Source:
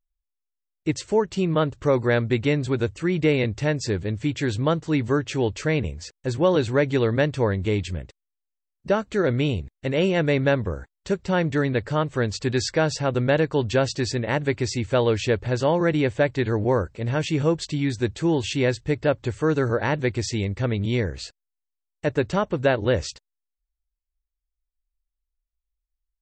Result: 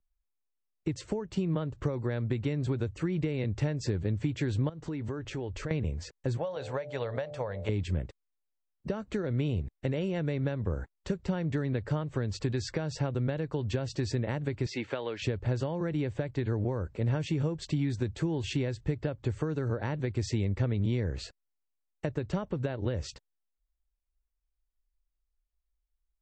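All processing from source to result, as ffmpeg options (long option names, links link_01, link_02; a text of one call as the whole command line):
ffmpeg -i in.wav -filter_complex "[0:a]asettb=1/sr,asplit=3[link_01][link_02][link_03];[link_01]atrim=end=4.694[link_04];[link_02]atrim=start=4.69:end=5.71,asetpts=PTS-STARTPTS,afade=type=in:duration=0.004:curve=qsin,afade=type=out:start_time=1.016:duration=0.004:curve=qsin,asubboost=boost=10.5:cutoff=78,acompressor=threshold=-32dB:ratio=16:attack=3.2:release=140:knee=1:detection=peak[link_05];[link_03]atrim=start=5.706[link_06];[link_04][link_05]acrossfade=duration=0.004:curve1=hsin:curve2=qsin[link_07];[link_07][link_06]acrossfade=duration=0.004:curve1=qsin:curve2=hsin,asettb=1/sr,asplit=3[link_08][link_09][link_10];[link_08]atrim=end=6.374[link_11];[link_09]atrim=start=6.37:end=7.69,asetpts=PTS-STARTPTS,afade=type=in:duration=0.004:curve=qsin,afade=type=out:start_time=1.316:duration=0.004:curve=qsin,lowshelf=frequency=440:width_type=q:width=3:gain=-9.5,bandreject=frequency=73.93:width_type=h:width=4,bandreject=frequency=147.86:width_type=h:width=4,bandreject=frequency=221.79:width_type=h:width=4,bandreject=frequency=295.72:width_type=h:width=4,bandreject=frequency=369.65:width_type=h:width=4,bandreject=frequency=443.58:width_type=h:width=4,bandreject=frequency=517.51:width_type=h:width=4,bandreject=frequency=591.44:width_type=h:width=4,bandreject=frequency=665.37:width_type=h:width=4,bandreject=frequency=739.3:width_type=h:width=4,bandreject=frequency=813.23:width_type=h:width=4[link_12];[link_10]atrim=start=7.686[link_13];[link_11][link_12]acrossfade=duration=0.004:curve1=hsin:curve2=qsin[link_14];[link_14][link_13]acrossfade=duration=0.004:curve1=qsin:curve2=hsin,asettb=1/sr,asplit=3[link_15][link_16][link_17];[link_15]atrim=end=14.664[link_18];[link_16]atrim=start=14.66:end=15.22,asetpts=PTS-STARTPTS,afade=type=in:duration=0.004:curve=qsin,afade=type=out:start_time=0.556:duration=0.004:curve=qsin,highpass=230,lowpass=3700,tiltshelf=frequency=650:gain=-5.5[link_19];[link_17]atrim=start=15.216[link_20];[link_18][link_19]acrossfade=duration=0.004:curve1=hsin:curve2=qsin[link_21];[link_21][link_20]acrossfade=duration=0.004:curve1=qsin:curve2=hsin,acompressor=threshold=-25dB:ratio=6,highshelf=frequency=2100:gain=-10.5,acrossover=split=190|3000[link_22][link_23][link_24];[link_23]acompressor=threshold=-33dB:ratio=6[link_25];[link_22][link_25][link_24]amix=inputs=3:normalize=0,volume=1.5dB" out.wav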